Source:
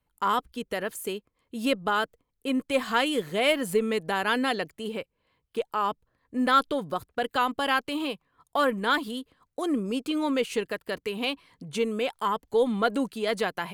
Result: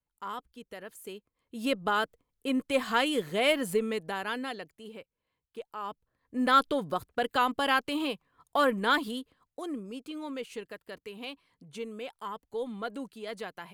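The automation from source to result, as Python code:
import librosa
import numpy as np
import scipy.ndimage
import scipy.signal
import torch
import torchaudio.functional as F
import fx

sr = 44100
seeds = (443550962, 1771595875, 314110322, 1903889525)

y = fx.gain(x, sr, db=fx.line((0.84, -13.0), (1.85, -2.0), (3.62, -2.0), (4.7, -12.0), (5.74, -12.0), (6.55, -1.0), (9.09, -1.0), (9.87, -11.5)))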